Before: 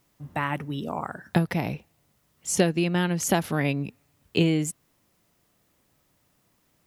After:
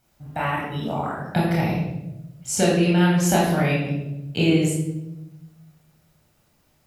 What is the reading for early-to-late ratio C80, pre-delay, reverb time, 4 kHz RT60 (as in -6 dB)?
5.0 dB, 23 ms, 0.95 s, 0.70 s